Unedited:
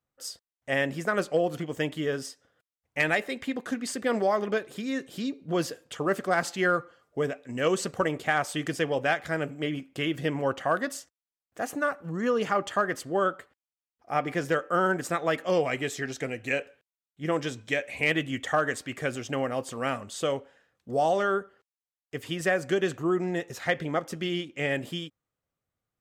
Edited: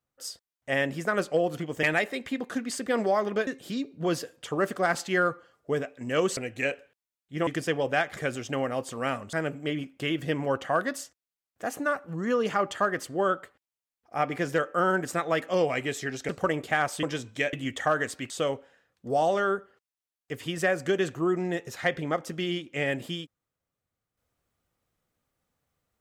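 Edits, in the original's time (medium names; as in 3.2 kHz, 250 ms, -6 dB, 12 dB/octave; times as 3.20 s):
1.83–2.99 s: delete
4.63–4.95 s: delete
7.85–8.59 s: swap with 16.25–17.35 s
17.85–18.20 s: delete
18.97–20.13 s: move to 9.29 s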